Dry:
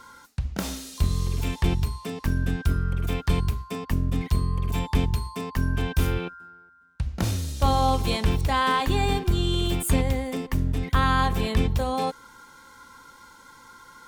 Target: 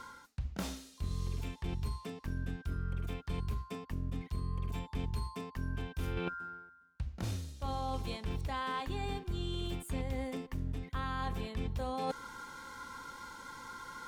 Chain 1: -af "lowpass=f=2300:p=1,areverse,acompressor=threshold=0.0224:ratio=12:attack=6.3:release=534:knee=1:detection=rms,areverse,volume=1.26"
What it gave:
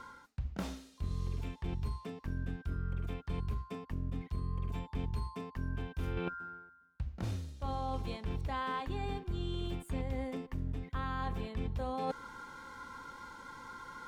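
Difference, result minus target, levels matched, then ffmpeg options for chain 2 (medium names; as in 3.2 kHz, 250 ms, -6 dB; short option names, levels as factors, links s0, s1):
8 kHz band -7.0 dB
-af "lowpass=f=6900:p=1,areverse,acompressor=threshold=0.0224:ratio=12:attack=6.3:release=534:knee=1:detection=rms,areverse,volume=1.26"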